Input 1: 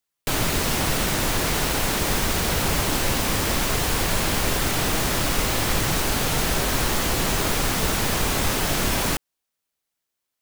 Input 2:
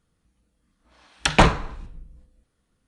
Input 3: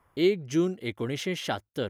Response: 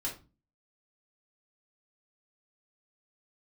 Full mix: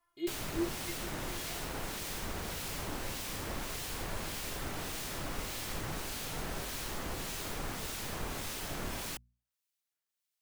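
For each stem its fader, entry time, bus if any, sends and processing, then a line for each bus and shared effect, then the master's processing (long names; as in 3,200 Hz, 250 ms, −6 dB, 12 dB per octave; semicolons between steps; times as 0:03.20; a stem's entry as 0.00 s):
−14.0 dB, 0.00 s, no send, mains-hum notches 60/120/180/240 Hz; two-band tremolo in antiphase 1.7 Hz, depth 50%, crossover 2,000 Hz
muted
−4.5 dB, 0.00 s, no send, stiff-string resonator 340 Hz, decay 0.22 s, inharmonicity 0.002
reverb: not used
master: one half of a high-frequency compander encoder only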